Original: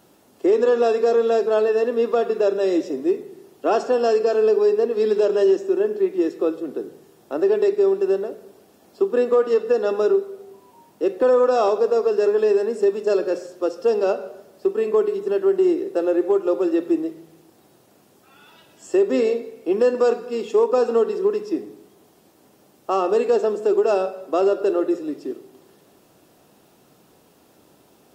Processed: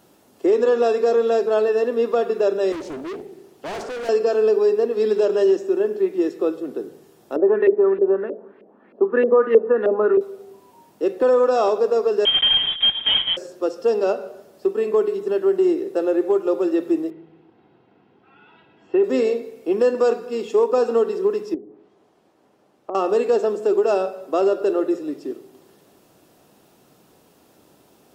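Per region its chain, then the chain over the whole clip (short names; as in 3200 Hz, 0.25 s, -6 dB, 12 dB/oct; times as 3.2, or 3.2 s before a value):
2.72–4.09 overloaded stage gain 28 dB + Doppler distortion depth 0.47 ms
7.36–10.21 speaker cabinet 220–3700 Hz, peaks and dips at 220 Hz +8 dB, 720 Hz -6 dB, 1800 Hz +4 dB + LFO low-pass saw up 3.2 Hz 480–2500 Hz
12.25–13.37 block floating point 3-bit + inverted band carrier 3600 Hz
17.1–19.04 LPF 3000 Hz 24 dB/oct + notch comb 590 Hz
21.54–22.95 LPF 1500 Hz 6 dB/oct + low shelf 340 Hz -9 dB + treble ducked by the level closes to 490 Hz, closed at -30.5 dBFS
whole clip: dry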